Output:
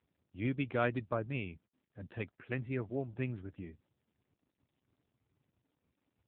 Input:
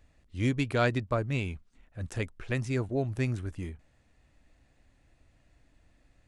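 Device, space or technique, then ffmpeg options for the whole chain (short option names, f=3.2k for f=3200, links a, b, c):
mobile call with aggressive noise cancelling: -af "highpass=f=130:p=1,afftdn=nr=26:nf=-57,volume=-4.5dB" -ar 8000 -c:a libopencore_amrnb -b:a 7950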